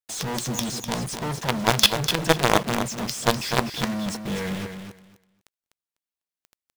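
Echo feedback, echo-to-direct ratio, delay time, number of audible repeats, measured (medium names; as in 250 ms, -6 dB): 18%, -8.0 dB, 249 ms, 2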